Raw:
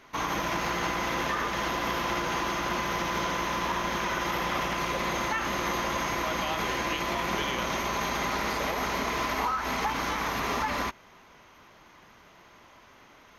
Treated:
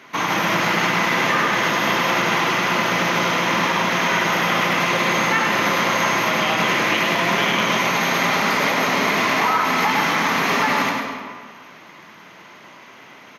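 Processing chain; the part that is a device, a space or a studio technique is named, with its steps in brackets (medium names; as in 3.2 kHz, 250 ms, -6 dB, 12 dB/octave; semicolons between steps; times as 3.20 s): PA in a hall (high-pass 150 Hz 24 dB/octave; peaking EQ 2.2 kHz +5 dB 1.3 oct; delay 101 ms -5 dB; reverberation RT60 1.6 s, pre-delay 96 ms, DRR 5 dB); bass shelf 140 Hz +9.5 dB; trim +6.5 dB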